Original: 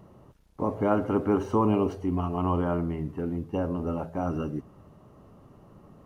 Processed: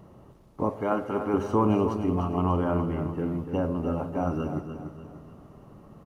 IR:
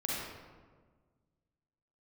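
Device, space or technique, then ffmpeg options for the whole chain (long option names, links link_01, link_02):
compressed reverb return: -filter_complex "[0:a]asplit=2[link_01][link_02];[1:a]atrim=start_sample=2205[link_03];[link_02][link_03]afir=irnorm=-1:irlink=0,acompressor=threshold=-25dB:ratio=6,volume=-13dB[link_04];[link_01][link_04]amix=inputs=2:normalize=0,asettb=1/sr,asplit=3[link_05][link_06][link_07];[link_05]atrim=end=0.694[link_08];[link_06]atrim=start=0.69:end=1.34,asetpts=PTS-STARTPTS,afade=type=in:duration=0.004:curve=qsin,afade=type=out:start_time=0.646:duration=0.004:curve=qsin,lowshelf=frequency=400:gain=-9[link_09];[link_07]atrim=start=1.336[link_10];[link_08][link_09]acrossfade=duration=0.004:curve1=hsin:curve2=qsin[link_11];[link_11][link_10]acrossfade=duration=0.004:curve1=qsin:curve2=hsin,aecho=1:1:295|590|885|1180|1475:0.355|0.149|0.0626|0.0263|0.011"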